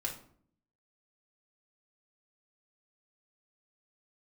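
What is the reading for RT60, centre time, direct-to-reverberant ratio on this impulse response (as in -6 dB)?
0.55 s, 19 ms, -1.5 dB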